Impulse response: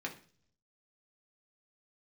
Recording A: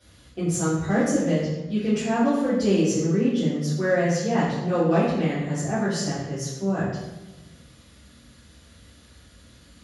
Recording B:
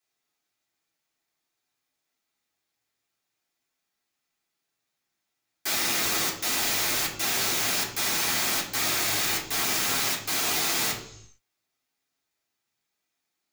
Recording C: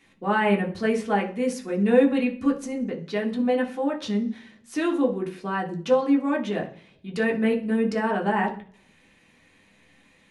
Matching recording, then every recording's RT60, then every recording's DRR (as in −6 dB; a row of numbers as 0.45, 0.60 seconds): C; 1.1, 0.70, 0.45 seconds; −12.0, −5.0, 0.0 decibels